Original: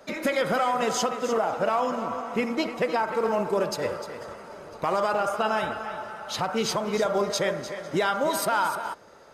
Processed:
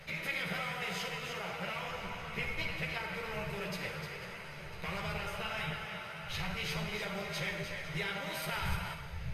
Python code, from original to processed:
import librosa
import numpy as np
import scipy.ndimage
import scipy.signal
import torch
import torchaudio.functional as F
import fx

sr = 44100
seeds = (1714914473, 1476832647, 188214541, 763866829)

y = fx.bin_compress(x, sr, power=0.6)
y = fx.dmg_wind(y, sr, seeds[0], corner_hz=110.0, level_db=-38.0)
y = fx.curve_eq(y, sr, hz=(110.0, 160.0, 230.0, 380.0, 1200.0, 2300.0, 7300.0, 11000.0), db=(0, 9, -19, -12, -11, 6, -11, -3))
y = fx.rev_schroeder(y, sr, rt60_s=1.2, comb_ms=38, drr_db=6.0)
y = fx.ensemble(y, sr)
y = F.gain(torch.from_numpy(y), -7.5).numpy()